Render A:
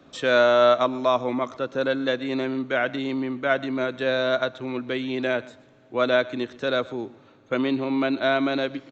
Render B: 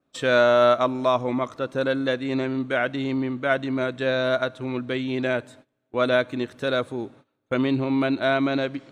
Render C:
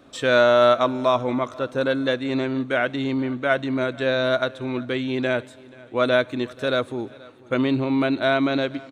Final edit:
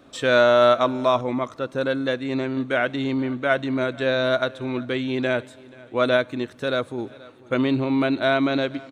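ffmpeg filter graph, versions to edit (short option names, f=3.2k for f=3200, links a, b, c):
-filter_complex "[1:a]asplit=2[a][b];[2:a]asplit=3[c][d][e];[c]atrim=end=1.212[f];[a]atrim=start=1.208:end=2.572[g];[d]atrim=start=2.568:end=6.172[h];[b]atrim=start=6.168:end=6.982[i];[e]atrim=start=6.978[j];[f][g]acrossfade=d=0.004:c1=hsin:c2=hsin[k];[k][h]acrossfade=d=0.004:c1=hsin:c2=hsin[l];[l][i]acrossfade=d=0.004:c1=hsin:c2=hsin[m];[m][j]acrossfade=d=0.004:c1=hsin:c2=hsin"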